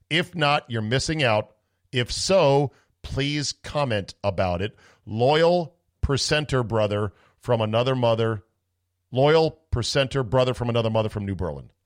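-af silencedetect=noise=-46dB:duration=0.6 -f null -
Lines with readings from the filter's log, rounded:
silence_start: 8.40
silence_end: 9.12 | silence_duration: 0.72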